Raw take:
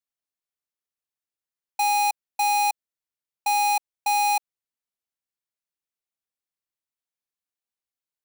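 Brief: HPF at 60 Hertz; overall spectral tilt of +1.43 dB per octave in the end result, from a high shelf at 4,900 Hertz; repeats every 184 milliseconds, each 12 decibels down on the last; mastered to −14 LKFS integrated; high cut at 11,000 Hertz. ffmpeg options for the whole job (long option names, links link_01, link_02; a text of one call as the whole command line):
ffmpeg -i in.wav -af "highpass=60,lowpass=11000,highshelf=frequency=4900:gain=4.5,aecho=1:1:184|368|552:0.251|0.0628|0.0157,volume=9dB" out.wav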